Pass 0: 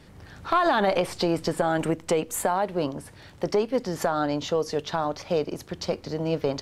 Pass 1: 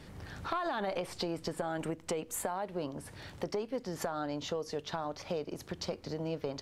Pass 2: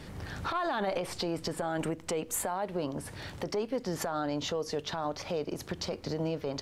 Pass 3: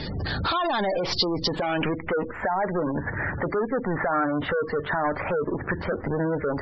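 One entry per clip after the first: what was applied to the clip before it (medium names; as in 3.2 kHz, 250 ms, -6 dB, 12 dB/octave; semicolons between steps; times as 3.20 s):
compression 2.5:1, threshold -38 dBFS, peak gain reduction 13.5 dB
peak limiter -28.5 dBFS, peak gain reduction 10 dB; trim +5.5 dB
waveshaping leveller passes 3; low-pass sweep 4.6 kHz -> 1.7 kHz, 1.40–2.18 s; spectral gate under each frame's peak -20 dB strong; trim +2 dB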